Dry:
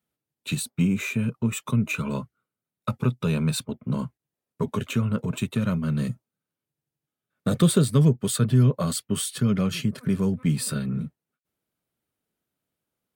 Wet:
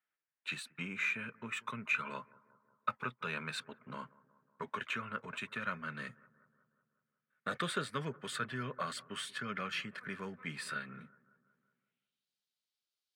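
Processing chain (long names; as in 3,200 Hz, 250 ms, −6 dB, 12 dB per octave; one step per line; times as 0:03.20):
bucket-brigade delay 184 ms, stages 2,048, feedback 60%, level −22.5 dB
band-pass filter sweep 1,700 Hz → 4,400 Hz, 0:11.73–0:12.29
level +3.5 dB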